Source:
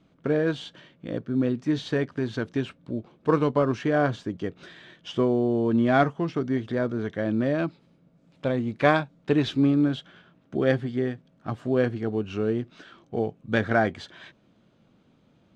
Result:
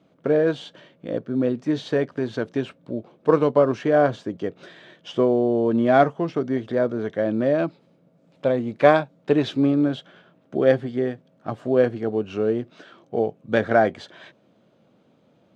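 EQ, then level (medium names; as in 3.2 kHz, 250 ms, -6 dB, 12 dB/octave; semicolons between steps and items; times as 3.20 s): high-pass 110 Hz; peaking EQ 570 Hz +7.5 dB 1.1 oct; 0.0 dB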